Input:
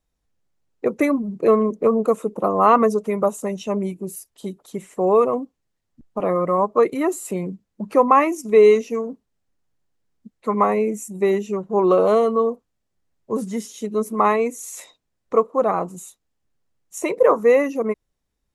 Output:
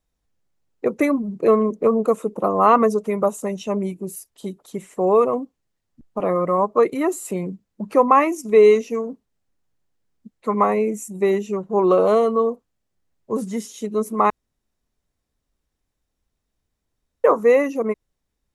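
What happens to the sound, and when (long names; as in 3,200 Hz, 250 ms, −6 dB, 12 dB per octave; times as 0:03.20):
0:14.30–0:17.24: fill with room tone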